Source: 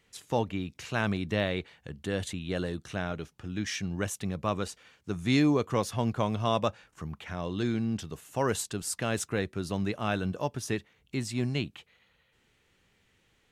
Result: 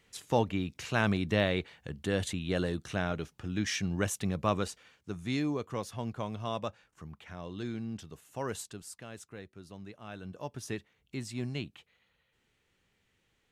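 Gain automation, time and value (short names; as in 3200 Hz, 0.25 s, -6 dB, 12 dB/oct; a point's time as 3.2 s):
4.54 s +1 dB
5.37 s -8 dB
8.64 s -8 dB
9.07 s -16 dB
10.06 s -16 dB
10.59 s -6 dB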